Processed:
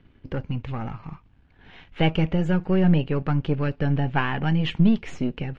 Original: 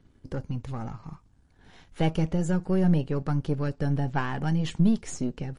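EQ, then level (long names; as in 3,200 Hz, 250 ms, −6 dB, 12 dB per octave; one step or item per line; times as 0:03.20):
low-pass with resonance 2,700 Hz, resonance Q 2.4
+3.5 dB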